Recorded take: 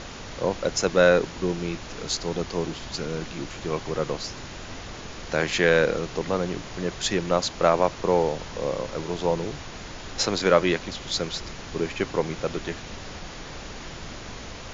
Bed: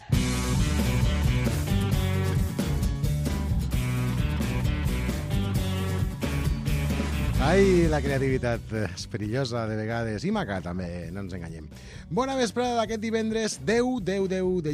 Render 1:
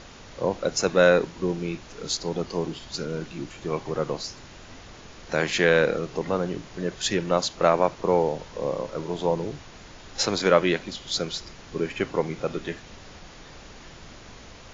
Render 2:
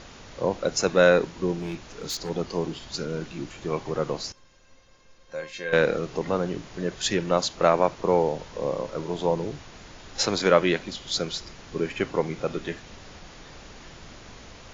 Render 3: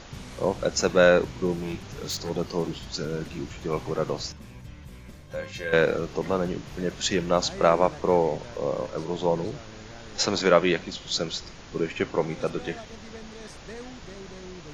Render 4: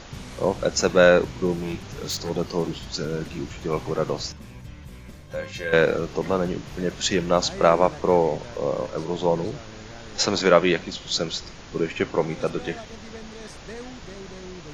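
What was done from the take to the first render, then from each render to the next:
noise print and reduce 7 dB
1.60–2.30 s: overload inside the chain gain 27.5 dB; 4.32–5.73 s: feedback comb 530 Hz, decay 0.18 s, mix 90%
add bed -17.5 dB
trim +2.5 dB

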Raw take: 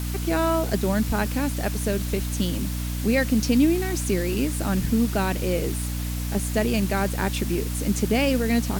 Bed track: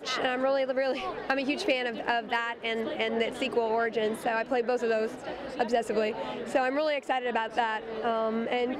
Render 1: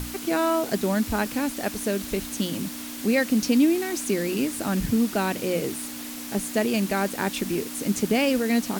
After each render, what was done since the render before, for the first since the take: hum notches 60/120/180 Hz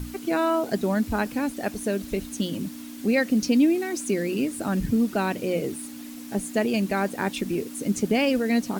noise reduction 9 dB, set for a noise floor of -36 dBFS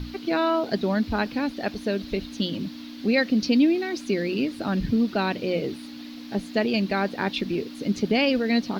resonant high shelf 6 kHz -12.5 dB, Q 3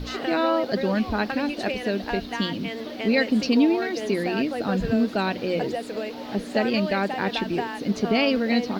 add bed track -3.5 dB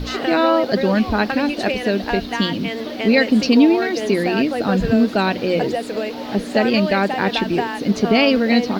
trim +6.5 dB; peak limiter -3 dBFS, peak gain reduction 1 dB

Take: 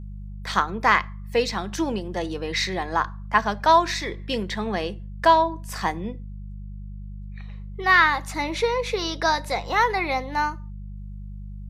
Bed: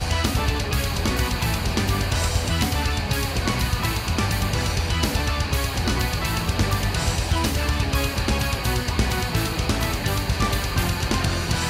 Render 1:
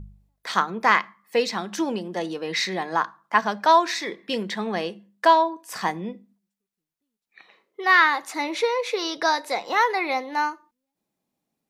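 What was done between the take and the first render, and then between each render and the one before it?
de-hum 50 Hz, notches 4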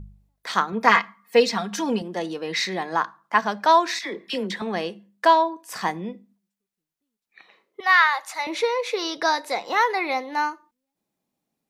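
0.72–2.02 s: comb 4.3 ms, depth 86%; 3.99–4.62 s: phase dispersion lows, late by 44 ms, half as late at 1.1 kHz; 7.80–8.47 s: high-pass 580 Hz 24 dB/octave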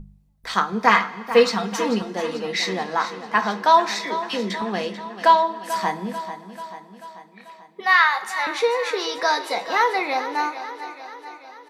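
feedback delay 439 ms, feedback 59%, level -12.5 dB; two-slope reverb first 0.2 s, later 2.8 s, from -21 dB, DRR 6.5 dB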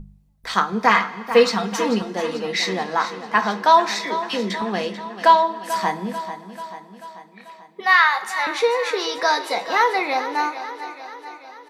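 trim +1.5 dB; peak limiter -3 dBFS, peak gain reduction 2.5 dB

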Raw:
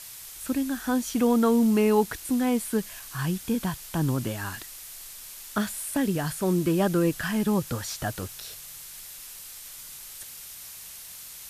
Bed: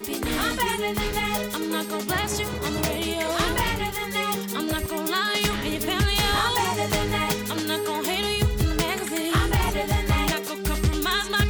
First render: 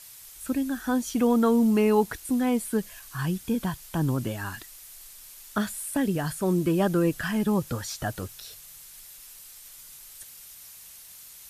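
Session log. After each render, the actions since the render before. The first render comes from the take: noise reduction 6 dB, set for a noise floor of -43 dBFS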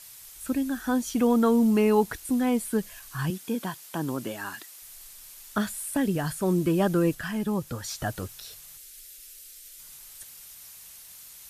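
3.30–4.82 s: high-pass 240 Hz; 7.15–7.84 s: gain -3.5 dB; 8.77–9.80 s: static phaser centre 380 Hz, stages 4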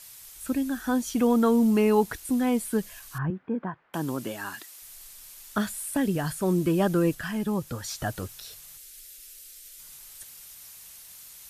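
3.18–3.94 s: low-pass 1.7 kHz 24 dB/octave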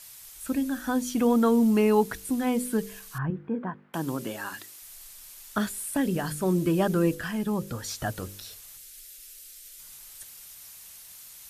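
de-hum 49.61 Hz, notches 11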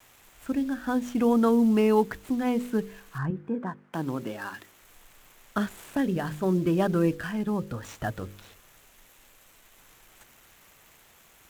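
median filter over 9 samples; vibrato 0.66 Hz 21 cents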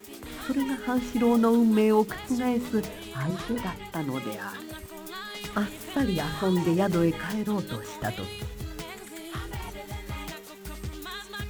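add bed -14 dB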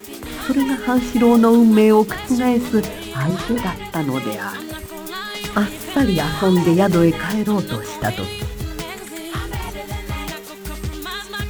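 trim +9.5 dB; peak limiter -3 dBFS, peak gain reduction 2 dB

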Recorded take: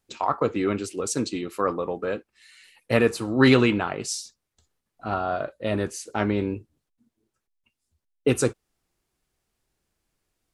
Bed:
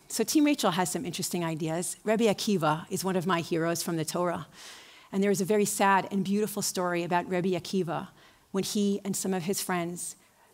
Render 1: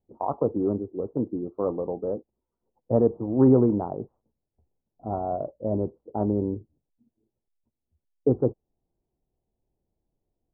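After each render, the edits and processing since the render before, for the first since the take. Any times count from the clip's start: local Wiener filter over 25 samples; steep low-pass 900 Hz 36 dB/octave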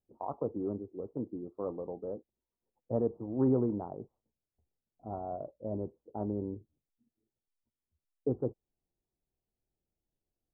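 trim -10 dB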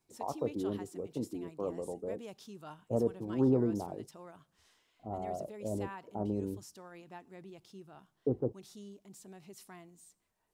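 add bed -22.5 dB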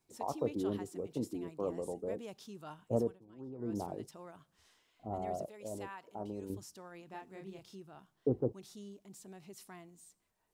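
2.96–3.82 s: dip -20 dB, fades 0.24 s; 5.45–6.50 s: bass shelf 470 Hz -11.5 dB; 7.10–7.76 s: doubling 31 ms -2.5 dB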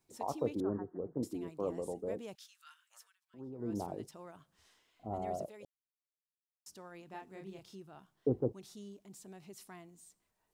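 0.60–1.23 s: steep low-pass 1.7 kHz 72 dB/octave; 2.35–3.34 s: steep high-pass 1.4 kHz; 5.65–6.66 s: mute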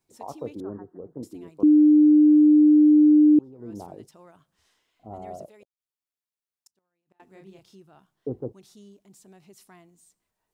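1.63–3.39 s: bleep 301 Hz -11.5 dBFS; 5.50–7.20 s: inverted gate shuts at -42 dBFS, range -31 dB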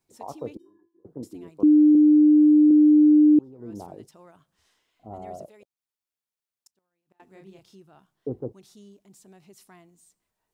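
0.57–1.05 s: feedback comb 340 Hz, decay 0.35 s, harmonics odd, mix 100%; 1.95–2.71 s: Chebyshev low-pass 590 Hz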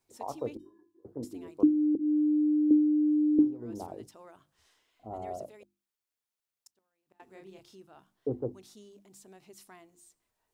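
peaking EQ 170 Hz -11 dB 0.28 oct; hum notches 50/100/150/200/250/300/350 Hz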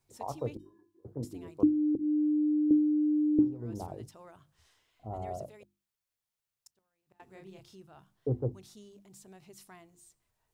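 resonant low shelf 190 Hz +7 dB, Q 1.5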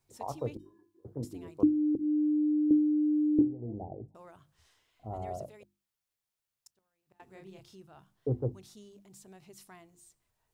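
3.41–4.15 s: elliptic low-pass 790 Hz

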